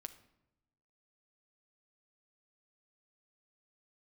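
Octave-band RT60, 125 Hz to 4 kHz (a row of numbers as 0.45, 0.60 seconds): 1.3, 1.2, 0.95, 0.80, 0.70, 0.55 seconds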